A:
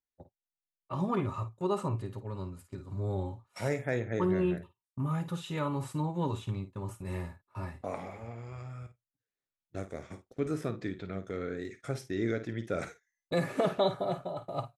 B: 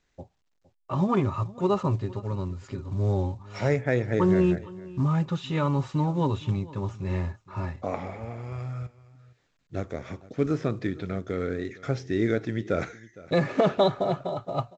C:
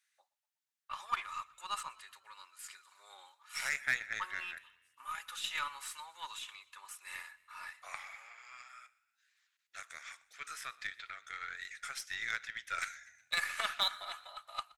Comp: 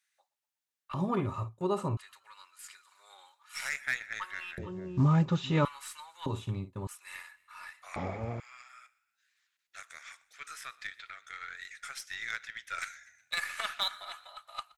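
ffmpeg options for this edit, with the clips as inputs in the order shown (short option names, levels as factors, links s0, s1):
-filter_complex "[0:a]asplit=2[s0][s1];[1:a]asplit=2[s2][s3];[2:a]asplit=5[s4][s5][s6][s7][s8];[s4]atrim=end=0.942[s9];[s0]atrim=start=0.938:end=1.972[s10];[s5]atrim=start=1.968:end=4.582[s11];[s2]atrim=start=4.578:end=5.652[s12];[s6]atrim=start=5.648:end=6.262[s13];[s1]atrim=start=6.258:end=6.872[s14];[s7]atrim=start=6.868:end=7.962[s15];[s3]atrim=start=7.958:end=8.402[s16];[s8]atrim=start=8.398[s17];[s9][s10]acrossfade=d=0.004:c1=hsin:c2=hsin[s18];[s18][s11]acrossfade=d=0.004:c1=hsin:c2=hsin[s19];[s19][s12]acrossfade=d=0.004:c1=hsin:c2=hsin[s20];[s20][s13]acrossfade=d=0.004:c1=hsin:c2=hsin[s21];[s21][s14]acrossfade=d=0.004:c1=hsin:c2=hsin[s22];[s22][s15]acrossfade=d=0.004:c1=hsin:c2=hsin[s23];[s23][s16]acrossfade=d=0.004:c1=hsin:c2=hsin[s24];[s24][s17]acrossfade=d=0.004:c1=hsin:c2=hsin"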